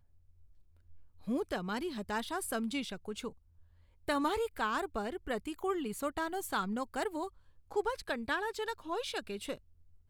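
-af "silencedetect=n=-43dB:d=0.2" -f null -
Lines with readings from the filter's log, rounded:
silence_start: 0.00
silence_end: 1.27 | silence_duration: 1.27
silence_start: 3.30
silence_end: 4.08 | silence_duration: 0.78
silence_start: 7.28
silence_end: 7.71 | silence_duration: 0.42
silence_start: 9.57
silence_end: 10.09 | silence_duration: 0.52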